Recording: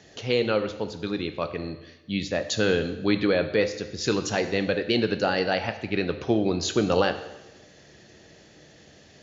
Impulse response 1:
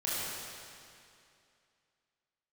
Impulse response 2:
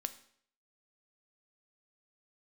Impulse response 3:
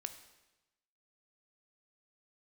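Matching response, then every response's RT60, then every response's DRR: 3; 2.5, 0.60, 1.0 s; -9.0, 10.0, 8.5 dB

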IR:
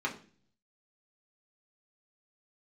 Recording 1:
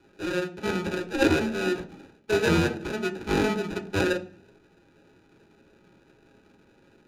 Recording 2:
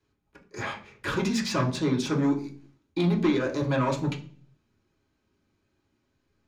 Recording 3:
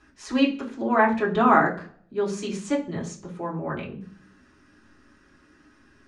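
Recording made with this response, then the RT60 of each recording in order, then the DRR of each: 2; 0.40, 0.40, 0.40 s; 3.5, -2.5, -6.5 dB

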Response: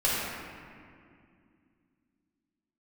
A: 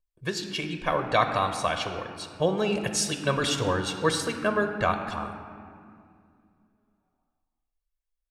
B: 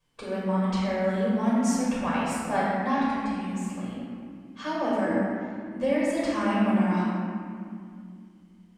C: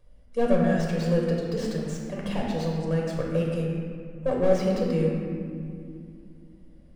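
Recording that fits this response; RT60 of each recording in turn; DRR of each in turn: B; 2.3, 2.3, 2.3 s; 6.0, -8.0, -2.5 dB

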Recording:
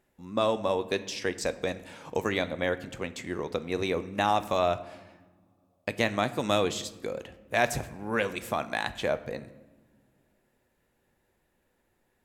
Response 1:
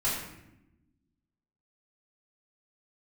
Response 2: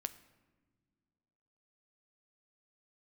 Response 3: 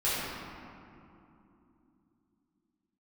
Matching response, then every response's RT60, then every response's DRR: 2; 0.90 s, not exponential, 3.0 s; -9.0, 11.0, -12.0 dB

